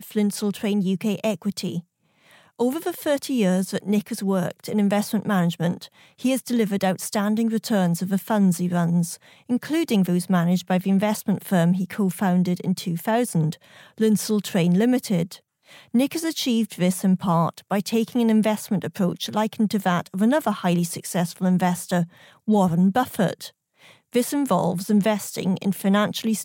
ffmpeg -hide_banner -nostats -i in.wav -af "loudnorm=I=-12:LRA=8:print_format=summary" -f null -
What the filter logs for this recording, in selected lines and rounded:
Input Integrated:    -22.9 LUFS
Input True Peak:      -7.0 dBTP
Input LRA:             1.6 LU
Input Threshold:     -33.2 LUFS